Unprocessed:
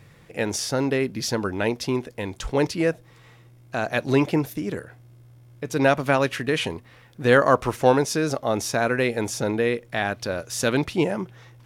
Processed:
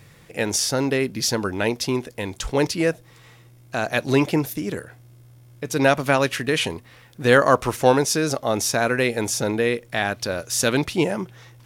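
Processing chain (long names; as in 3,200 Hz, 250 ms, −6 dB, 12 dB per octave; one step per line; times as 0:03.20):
high-shelf EQ 3,700 Hz +7 dB
level +1 dB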